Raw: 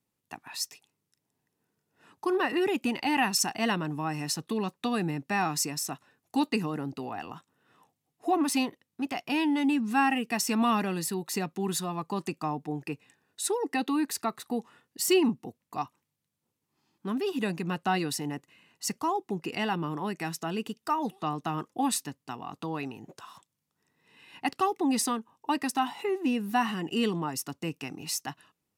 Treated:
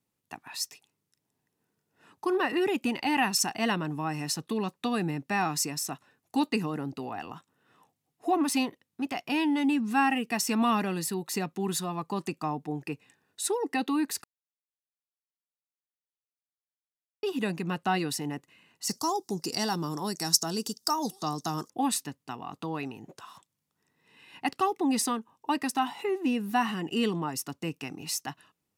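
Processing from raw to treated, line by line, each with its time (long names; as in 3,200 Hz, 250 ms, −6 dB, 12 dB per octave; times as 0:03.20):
0:14.24–0:17.23: silence
0:18.89–0:21.70: high shelf with overshoot 3,700 Hz +12.5 dB, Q 3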